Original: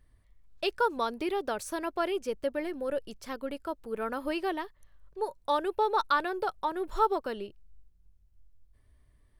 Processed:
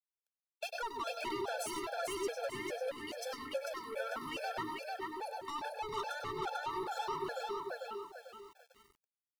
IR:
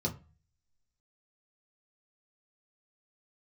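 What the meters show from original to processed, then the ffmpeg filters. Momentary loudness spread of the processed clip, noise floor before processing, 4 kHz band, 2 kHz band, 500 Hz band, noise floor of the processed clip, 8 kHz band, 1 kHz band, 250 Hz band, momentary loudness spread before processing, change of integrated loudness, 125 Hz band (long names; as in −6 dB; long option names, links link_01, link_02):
6 LU, −63 dBFS, −3.5 dB, −5.0 dB, −8.0 dB, below −85 dBFS, +1.0 dB, −8.0 dB, −10.0 dB, 10 LU, −8.0 dB, can't be measured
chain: -filter_complex "[0:a]highpass=720,acompressor=threshold=-41dB:ratio=2,aecho=1:1:445|890|1335|1780:0.596|0.197|0.0649|0.0214,acontrast=31,aeval=exprs='(tanh(56.2*val(0)+0.05)-tanh(0.05))/56.2':channel_layout=same,asplit=2[link_01][link_02];[1:a]atrim=start_sample=2205,adelay=99[link_03];[link_02][link_03]afir=irnorm=-1:irlink=0,volume=-8dB[link_04];[link_01][link_04]amix=inputs=2:normalize=0,aeval=exprs='val(0)*gte(abs(val(0)),0.00141)':channel_layout=same,afftfilt=real='re*gt(sin(2*PI*2.4*pts/sr)*(1-2*mod(floor(b*sr/1024/450),2)),0)':imag='im*gt(sin(2*PI*2.4*pts/sr)*(1-2*mod(floor(b*sr/1024/450),2)),0)':win_size=1024:overlap=0.75,volume=2dB"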